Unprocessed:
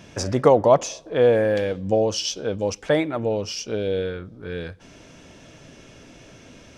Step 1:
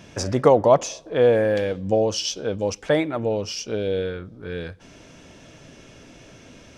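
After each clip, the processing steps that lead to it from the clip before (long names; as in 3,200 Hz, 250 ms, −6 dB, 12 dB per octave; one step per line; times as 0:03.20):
no processing that can be heard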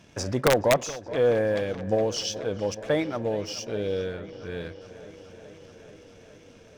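leveller curve on the samples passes 1
wrap-around overflow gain 4.5 dB
delay with a low-pass on its return 425 ms, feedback 76%, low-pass 3,600 Hz, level −16.5 dB
level −8 dB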